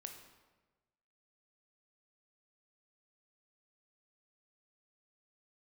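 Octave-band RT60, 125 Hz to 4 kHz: 1.5, 1.2, 1.3, 1.2, 1.0, 0.85 seconds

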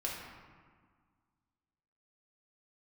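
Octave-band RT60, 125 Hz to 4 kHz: 2.1, 2.1, 1.6, 1.8, 1.4, 1.0 seconds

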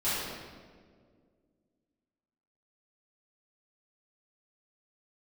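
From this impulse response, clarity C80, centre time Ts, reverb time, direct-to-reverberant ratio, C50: 0.0 dB, 118 ms, 1.9 s, −14.5 dB, −3.0 dB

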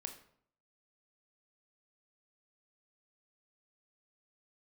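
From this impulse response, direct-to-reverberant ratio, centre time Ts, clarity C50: 5.0 dB, 15 ms, 9.5 dB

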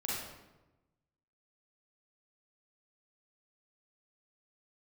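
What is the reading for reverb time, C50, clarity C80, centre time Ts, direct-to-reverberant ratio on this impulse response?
1.1 s, −2.5 dB, 2.0 dB, 82 ms, −6.5 dB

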